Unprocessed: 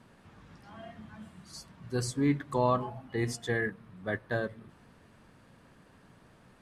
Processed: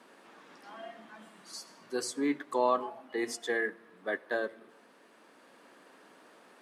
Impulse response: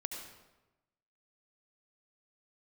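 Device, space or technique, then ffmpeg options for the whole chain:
ducked reverb: -filter_complex "[0:a]asplit=3[s0][s1][s2];[1:a]atrim=start_sample=2205[s3];[s1][s3]afir=irnorm=-1:irlink=0[s4];[s2]apad=whole_len=291900[s5];[s4][s5]sidechaincompress=threshold=0.00501:ratio=8:attack=16:release=886,volume=0.794[s6];[s0][s6]amix=inputs=2:normalize=0,highpass=f=290:w=0.5412,highpass=f=290:w=1.3066"

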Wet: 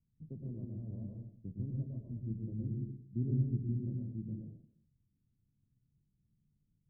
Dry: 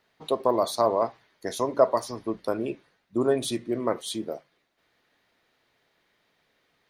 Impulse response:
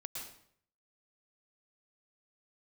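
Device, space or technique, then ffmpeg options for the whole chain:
club heard from the street: -filter_complex "[0:a]alimiter=limit=0.178:level=0:latency=1:release=270,lowpass=f=160:w=0.5412,lowpass=f=160:w=1.3066[s0];[1:a]atrim=start_sample=2205[s1];[s0][s1]afir=irnorm=-1:irlink=0,volume=3.35"

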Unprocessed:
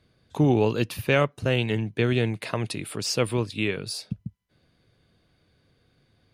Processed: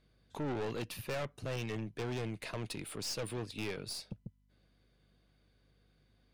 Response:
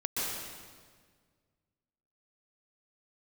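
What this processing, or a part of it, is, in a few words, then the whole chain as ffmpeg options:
valve amplifier with mains hum: -af "highpass=f=130:p=1,aeval=exprs='(tanh(25.1*val(0)+0.4)-tanh(0.4))/25.1':c=same,aeval=exprs='val(0)+0.000631*(sin(2*PI*50*n/s)+sin(2*PI*2*50*n/s)/2+sin(2*PI*3*50*n/s)/3+sin(2*PI*4*50*n/s)/4+sin(2*PI*5*50*n/s)/5)':c=same,volume=0.501"

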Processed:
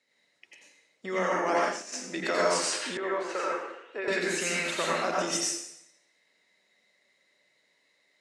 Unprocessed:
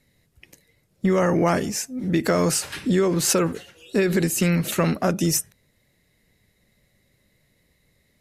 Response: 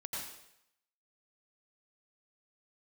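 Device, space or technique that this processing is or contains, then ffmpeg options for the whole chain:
supermarket ceiling speaker: -filter_complex "[0:a]highpass=300,lowpass=6800[s0];[1:a]atrim=start_sample=2205[s1];[s0][s1]afir=irnorm=-1:irlink=0,highpass=f=650:p=1,asplit=3[s2][s3][s4];[s2]afade=t=out:st=1.27:d=0.02[s5];[s3]agate=range=0.0224:threshold=0.0708:ratio=3:detection=peak,afade=t=in:st=1.27:d=0.02,afade=t=out:st=1.92:d=0.02[s6];[s4]afade=t=in:st=1.92:d=0.02[s7];[s5][s6][s7]amix=inputs=3:normalize=0,lowpass=f=10000:w=0.5412,lowpass=f=10000:w=1.3066,asettb=1/sr,asplit=3[s8][s9][s10];[s8]atrim=end=2.974[s11];[s9]atrim=start=2.97:end=4.08,asetpts=PTS-STARTPTS,afade=t=in:d=0.004:c=qsin,afade=t=out:st=1.106:d=0.004:c=qsin,acrossover=split=350 2300:gain=0.141 1 0.0794[s12][s13][s14];[s12][s13][s14]amix=inputs=3:normalize=0[s15];[s10]atrim=start=4.076[s16];[s11][s15]acrossfade=d=0.004:c1=hsin:c2=qsin[s17];[s17][s16]acrossfade=d=0.004:c1=qsin:c2=hsin"

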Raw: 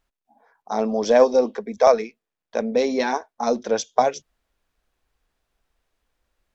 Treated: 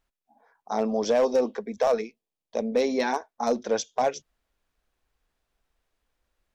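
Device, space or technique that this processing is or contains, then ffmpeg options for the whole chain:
limiter into clipper: -filter_complex "[0:a]asettb=1/sr,asplit=3[s0][s1][s2];[s0]atrim=end=2.014[s3];[s1]atrim=start=2.01:end=2.73,asetpts=PTS-STARTPTS,afade=t=in:d=0.004:c=qsin,afade=t=out:st=0.716:d=0.004:c=qsin,equalizer=f=1500:t=o:w=0.74:g=-13.5[s4];[s2]atrim=start=2.726[s5];[s3][s4]acrossfade=d=0.004:c1=hsin:c2=qsin[s6];[s6][s5]acrossfade=d=0.004:c1=qsin:c2=hsin,alimiter=limit=0.316:level=0:latency=1:release=29,asoftclip=type=hard:threshold=0.237,volume=0.708"

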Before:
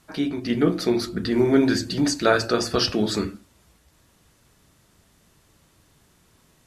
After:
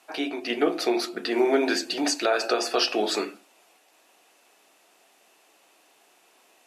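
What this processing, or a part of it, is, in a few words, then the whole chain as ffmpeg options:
laptop speaker: -af "highpass=f=330:w=0.5412,highpass=f=330:w=1.3066,equalizer=f=740:t=o:w=0.42:g=10,equalizer=f=2600:t=o:w=0.35:g=9,alimiter=limit=0.266:level=0:latency=1:release=141"

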